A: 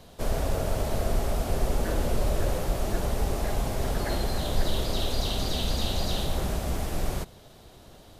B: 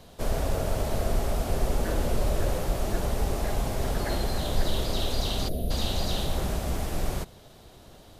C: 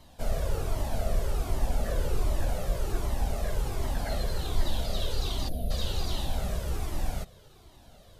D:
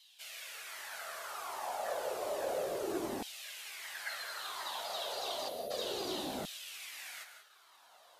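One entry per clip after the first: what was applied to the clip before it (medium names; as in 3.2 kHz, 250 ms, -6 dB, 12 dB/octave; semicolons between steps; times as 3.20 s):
time-frequency box 5.49–5.71 s, 740–9300 Hz -20 dB
Shepard-style flanger falling 1.3 Hz
gated-style reverb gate 210 ms rising, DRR 8 dB; LFO high-pass saw down 0.31 Hz 260–3300 Hz; trim -3.5 dB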